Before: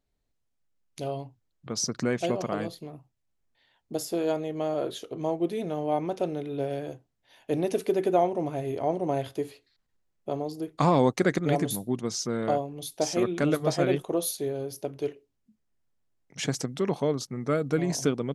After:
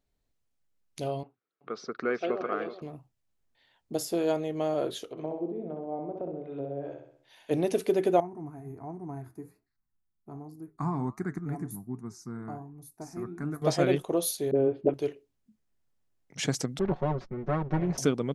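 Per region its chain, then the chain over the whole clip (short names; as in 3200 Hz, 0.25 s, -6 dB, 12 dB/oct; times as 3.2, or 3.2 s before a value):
1.23–2.82 speaker cabinet 380–3200 Hz, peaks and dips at 420 Hz +6 dB, 600 Hz -5 dB, 930 Hz -8 dB, 1300 Hz +9 dB, 1900 Hz -3 dB, 3000 Hz -6 dB + echo 0.378 s -12 dB
5.11–7.51 treble ducked by the level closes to 490 Hz, closed at -26.5 dBFS + low shelf 430 Hz -9.5 dB + feedback echo 64 ms, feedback 49%, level -5 dB
8.2–13.62 bell 4100 Hz -13.5 dB 2.7 oct + flange 1.3 Hz, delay 4.9 ms, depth 6.3 ms, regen -82% + fixed phaser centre 1300 Hz, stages 4
14.51–14.94 inverse Chebyshev low-pass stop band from 5300 Hz + bell 330 Hz +11 dB 1.9 oct + dispersion highs, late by 44 ms, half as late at 440 Hz
16.79–17.98 minimum comb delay 5.4 ms + tape spacing loss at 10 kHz 37 dB
whole clip: dry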